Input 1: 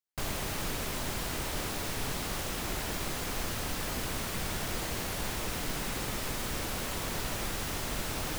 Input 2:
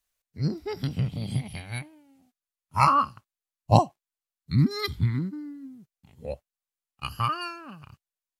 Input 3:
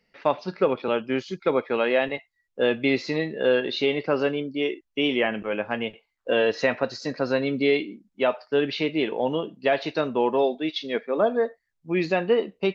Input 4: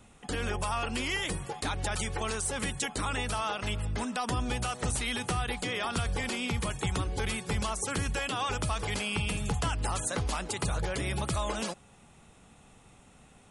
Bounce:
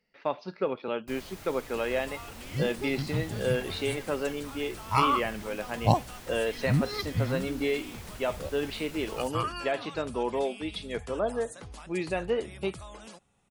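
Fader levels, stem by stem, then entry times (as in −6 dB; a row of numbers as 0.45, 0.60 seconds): −12.0, −4.5, −7.5, −13.5 decibels; 0.90, 2.15, 0.00, 1.45 seconds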